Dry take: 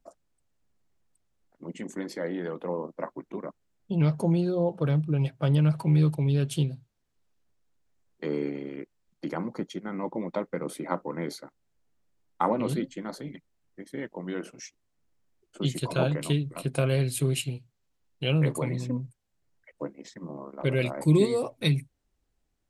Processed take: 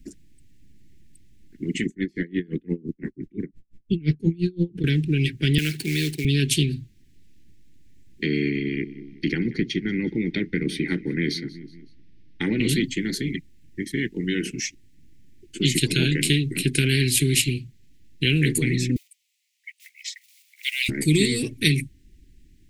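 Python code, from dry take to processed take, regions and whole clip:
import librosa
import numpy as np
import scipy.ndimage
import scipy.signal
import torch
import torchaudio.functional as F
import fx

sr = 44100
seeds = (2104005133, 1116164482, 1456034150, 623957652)

y = fx.chain(x, sr, fx.tilt_eq(slope=-2.0),
    fx.tremolo_db(hz=5.8, depth_db=38), at=(1.86, 4.84))
y = fx.chain(y, sr, fx.weighting(curve='A'),
    fx.quant_float(bits=2), at=(5.58, 6.25))
y = fx.chain(y, sr, fx.savgol(points=15),
    fx.echo_feedback(ms=185, feedback_pct=42, wet_db=-22), at=(8.24, 12.61))
y = fx.chain(y, sr, fx.block_float(bits=7),
    fx.steep_highpass(hz=2100.0, slope=48), at=(18.96, 20.89))
y = scipy.signal.sosfilt(scipy.signal.cheby2(4, 40, [520.0, 1300.0], 'bandstop', fs=sr, output='sos'), y)
y = fx.high_shelf(y, sr, hz=2200.0, db=-10.0)
y = fx.spectral_comp(y, sr, ratio=2.0)
y = y * 10.0 ** (7.0 / 20.0)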